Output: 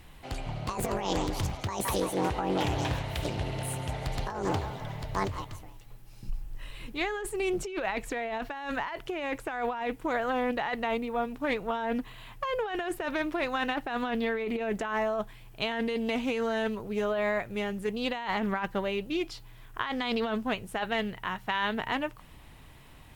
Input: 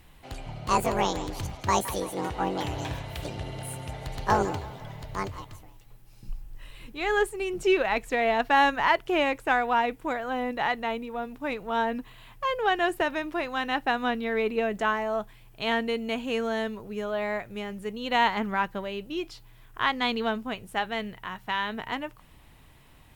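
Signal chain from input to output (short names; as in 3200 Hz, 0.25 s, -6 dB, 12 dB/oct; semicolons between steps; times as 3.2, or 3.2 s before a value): negative-ratio compressor -30 dBFS, ratio -1; Doppler distortion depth 0.33 ms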